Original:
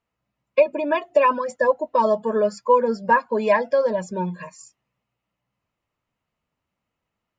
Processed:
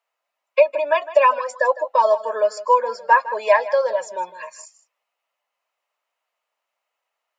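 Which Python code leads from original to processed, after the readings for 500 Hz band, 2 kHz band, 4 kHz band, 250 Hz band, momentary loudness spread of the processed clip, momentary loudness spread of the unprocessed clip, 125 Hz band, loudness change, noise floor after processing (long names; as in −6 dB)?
+1.0 dB, +3.5 dB, +4.0 dB, below −20 dB, 12 LU, 9 LU, below −30 dB, +2.0 dB, −82 dBFS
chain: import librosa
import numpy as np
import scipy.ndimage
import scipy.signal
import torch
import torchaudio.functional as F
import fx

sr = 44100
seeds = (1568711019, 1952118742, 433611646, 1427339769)

y = scipy.signal.sosfilt(scipy.signal.cheby1(3, 1.0, 610.0, 'highpass', fs=sr, output='sos'), x)
y = y + 10.0 ** (-16.0 / 20.0) * np.pad(y, (int(157 * sr / 1000.0), 0))[:len(y)]
y = y * 10.0 ** (4.0 / 20.0)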